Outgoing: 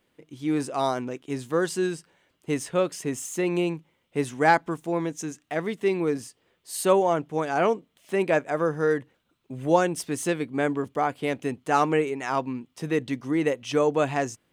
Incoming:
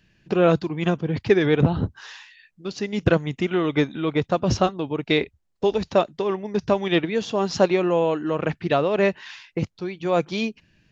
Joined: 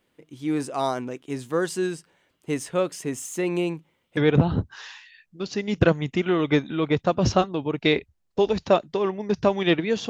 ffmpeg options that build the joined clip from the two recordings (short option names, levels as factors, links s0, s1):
-filter_complex "[0:a]apad=whole_dur=10.09,atrim=end=10.09,atrim=end=4.172[s0];[1:a]atrim=start=1.418:end=7.34[s1];[s0][s1]acrossfade=d=0.004:c1=hsin:c2=hsin"